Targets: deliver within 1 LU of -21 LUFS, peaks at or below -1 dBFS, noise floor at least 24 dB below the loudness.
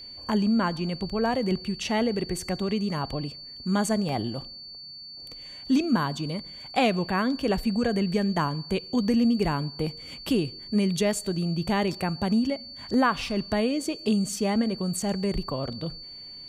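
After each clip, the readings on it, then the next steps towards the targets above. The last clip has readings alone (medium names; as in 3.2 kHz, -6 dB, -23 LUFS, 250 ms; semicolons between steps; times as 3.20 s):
dropouts 2; longest dropout 1.7 ms; steady tone 4.5 kHz; tone level -40 dBFS; loudness -27.0 LUFS; peak level -11.0 dBFS; loudness target -21.0 LUFS
-> interpolate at 4.09/12.94 s, 1.7 ms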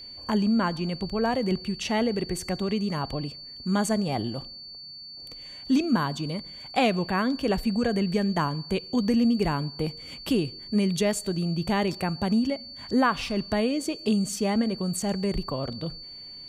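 dropouts 0; steady tone 4.5 kHz; tone level -40 dBFS
-> band-stop 4.5 kHz, Q 30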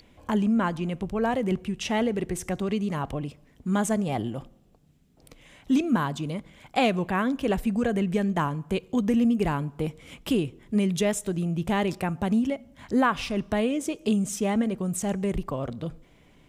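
steady tone not found; loudness -27.0 LUFS; peak level -11.0 dBFS; loudness target -21.0 LUFS
-> trim +6 dB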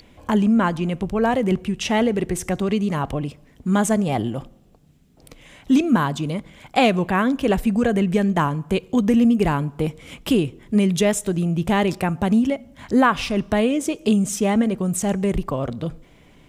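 loudness -21.0 LUFS; peak level -5.0 dBFS; noise floor -52 dBFS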